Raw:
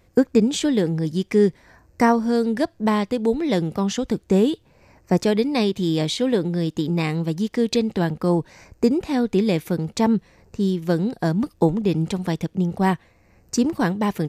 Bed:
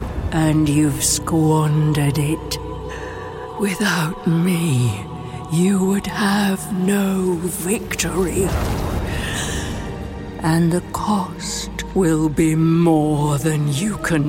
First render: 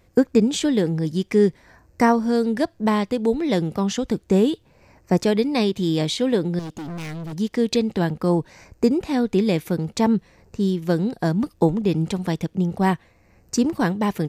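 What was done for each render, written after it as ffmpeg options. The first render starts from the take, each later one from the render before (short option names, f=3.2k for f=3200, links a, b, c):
-filter_complex "[0:a]asettb=1/sr,asplit=3[a][b][c];[a]atrim=end=6.594[d];[b]atrim=start=6.59:end=7.33,asetpts=PTS-STARTPTS,afade=t=in:d=0.004:c=qsin,afade=t=out:st=0.736:d=0.004:c=qsin,volume=30dB,asoftclip=hard,volume=-30dB[e];[c]atrim=start=7.326[f];[d][e]acrossfade=d=0.004:c1=hsin:c2=qsin[g];[g][f]acrossfade=d=0.004:c1=qsin:c2=hsin"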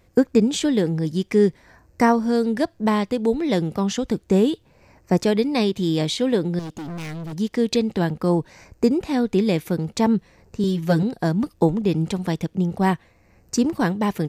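-filter_complex "[0:a]asettb=1/sr,asplit=3[a][b][c];[a]atrim=end=10.634[d];[b]atrim=start=10.63:end=11.03,asetpts=PTS-STARTPTS,afade=t=in:d=0.004:c=qsin,afade=t=out:st=0.396:d=0.004:c=qsin,aecho=1:1:7.1:0.94,atrim=end_sample=17640[e];[c]atrim=start=11.026[f];[d][e]acrossfade=d=0.004:c1=hsin:c2=qsin[g];[g][f]acrossfade=d=0.004:c1=qsin:c2=hsin"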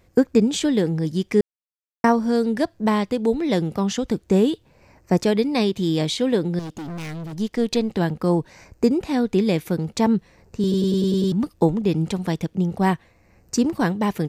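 -filter_complex "[0:a]asettb=1/sr,asplit=3[a][b][c];[a]atrim=end=7.274[d];[b]atrim=start=7.27:end=7.93,asetpts=PTS-STARTPTS,afade=t=in:d=0.004:c=qsin,afade=t=out:st=0.656:d=0.004:c=qsin,aeval=exprs='if(lt(val(0),0),0.708*val(0),val(0))':c=same[e];[c]atrim=start=7.926[f];[d][e]acrossfade=d=0.004:c1=hsin:c2=qsin[g];[g][f]acrossfade=d=0.004:c1=qsin:c2=hsin,asplit=10[h][i][j][k][l][m][n][o][p][q];[h]atrim=end=1.41,asetpts=PTS-STARTPTS,afade=t=out:st=1.406:d=0.004:c=hsin[r];[i]atrim=start=1.41:end=2.04,asetpts=PTS-STARTPTS,volume=0[s];[j]atrim=start=2.04:end=10.722,asetpts=PTS-STARTPTS,afade=t=in:d=0.004:c=hsin[t];[k]atrim=start=10.618:end=10.722[u];[l]atrim=start=10.618:end=10.722[v];[m]atrim=start=10.618:end=10.722[w];[n]atrim=start=10.618:end=10.722[x];[o]atrim=start=10.618:end=10.722[y];[p]atrim=start=10.618:end=10.722[z];[q]atrim=start=11.318[aa];[r][s][t]concat=n=3:v=0:a=1[ab];[ab][u]acrossfade=d=0.004:c1=hsin:c2=hsin[ac];[ac][v]acrossfade=d=0.004:c1=hsin:c2=hsin[ad];[ad][w]acrossfade=d=0.004:c1=hsin:c2=hsin[ae];[ae][x]acrossfade=d=0.004:c1=hsin:c2=hsin[af];[af][y]acrossfade=d=0.004:c1=hsin:c2=hsin[ag];[ag][z]acrossfade=d=0.004:c1=hsin:c2=hsin[ah];[ah][aa]acrossfade=d=0.004:c1=hsin:c2=hsin"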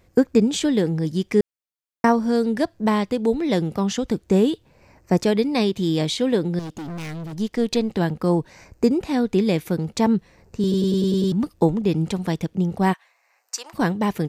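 -filter_complex "[0:a]asplit=3[a][b][c];[a]afade=t=out:st=12.92:d=0.02[d];[b]highpass=f=770:w=0.5412,highpass=f=770:w=1.3066,afade=t=in:st=12.92:d=0.02,afade=t=out:st=13.73:d=0.02[e];[c]afade=t=in:st=13.73:d=0.02[f];[d][e][f]amix=inputs=3:normalize=0"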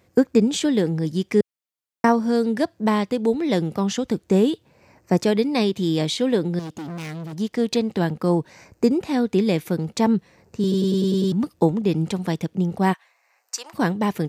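-af "highpass=100"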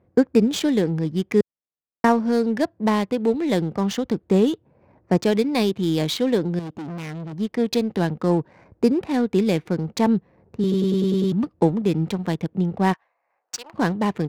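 -af "adynamicsmooth=sensitivity=7.5:basefreq=960"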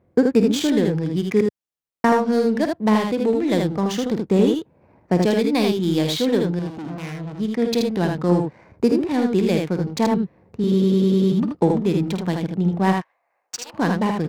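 -af "aecho=1:1:51|79:0.299|0.631"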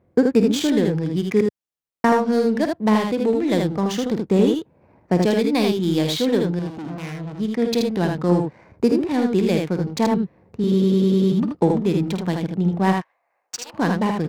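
-af anull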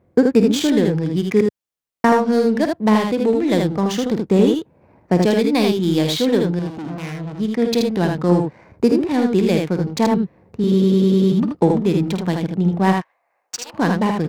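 -af "volume=2.5dB"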